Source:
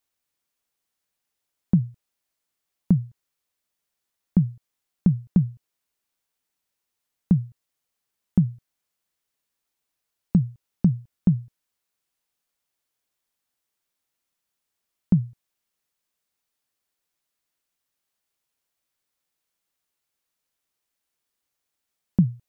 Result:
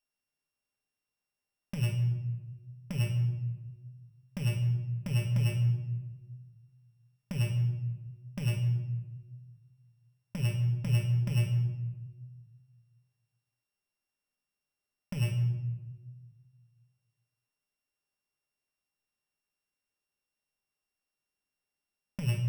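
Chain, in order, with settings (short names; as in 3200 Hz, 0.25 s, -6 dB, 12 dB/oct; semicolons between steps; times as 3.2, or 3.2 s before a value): sample sorter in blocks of 16 samples; sample leveller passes 3; negative-ratio compressor -19 dBFS, ratio -0.5; shoebox room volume 690 m³, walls mixed, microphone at 1.3 m; gain -7.5 dB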